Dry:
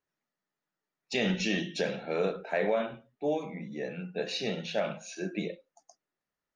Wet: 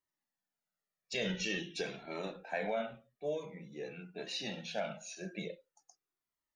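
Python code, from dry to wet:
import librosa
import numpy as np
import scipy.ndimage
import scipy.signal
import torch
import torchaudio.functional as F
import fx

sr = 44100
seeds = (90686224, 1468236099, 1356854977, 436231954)

y = fx.high_shelf(x, sr, hz=5300.0, db=7.0)
y = fx.comb_cascade(y, sr, direction='falling', hz=0.47)
y = y * librosa.db_to_amplitude(-2.5)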